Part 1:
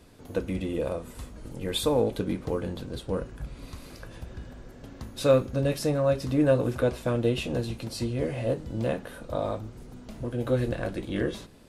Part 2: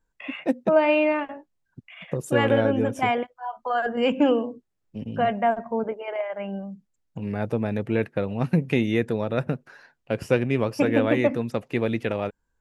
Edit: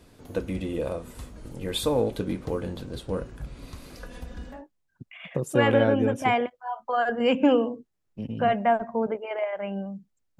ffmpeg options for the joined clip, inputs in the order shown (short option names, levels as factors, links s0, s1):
-filter_complex "[0:a]asettb=1/sr,asplit=3[s0][s1][s2];[s0]atrim=end=3.964[s3];[s1]atrim=start=3.96:end=4.63,asetpts=PTS-STARTPTS,afade=t=in:d=0.004:c=qsin,afade=t=out:st=0.666:d=0.004:c=qsin,aecho=1:1:4.1:0.79,atrim=end_sample=29547[s4];[s2]atrim=start=4.626[s5];[s3][s4]acrossfade=d=0.004:c1=hsin:c2=qsin[s6];[s6][s5]acrossfade=d=0.004:c1=qsin:c2=hsin,apad=whole_dur=10.39,atrim=end=10.39,atrim=end=4.63,asetpts=PTS-STARTPTS[s7];[1:a]atrim=start=1.24:end=7.16,asetpts=PTS-STARTPTS[s8];[s7][s8]acrossfade=d=0.16:c1=tri:c2=tri"